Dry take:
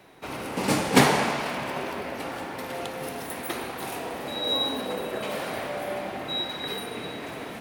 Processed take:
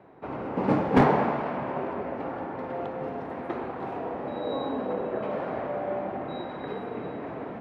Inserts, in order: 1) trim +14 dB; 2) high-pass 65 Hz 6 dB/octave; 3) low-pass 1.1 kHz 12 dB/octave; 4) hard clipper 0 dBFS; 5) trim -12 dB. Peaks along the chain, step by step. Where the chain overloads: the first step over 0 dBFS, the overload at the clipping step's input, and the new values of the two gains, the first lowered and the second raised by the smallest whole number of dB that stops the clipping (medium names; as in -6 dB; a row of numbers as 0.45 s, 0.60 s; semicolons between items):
+11.0 dBFS, +11.0 dBFS, +7.5 dBFS, 0.0 dBFS, -12.0 dBFS; step 1, 7.5 dB; step 1 +6 dB, step 5 -4 dB